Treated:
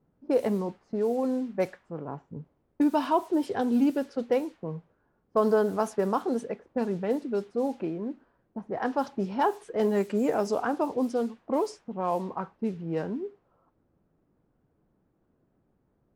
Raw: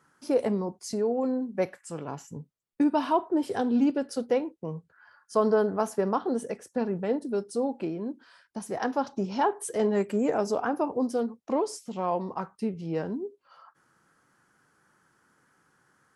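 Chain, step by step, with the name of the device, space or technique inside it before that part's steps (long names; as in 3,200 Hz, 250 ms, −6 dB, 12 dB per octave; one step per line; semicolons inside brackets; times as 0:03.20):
cassette deck with a dynamic noise filter (white noise bed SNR 26 dB; low-pass that shuts in the quiet parts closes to 320 Hz, open at −22 dBFS)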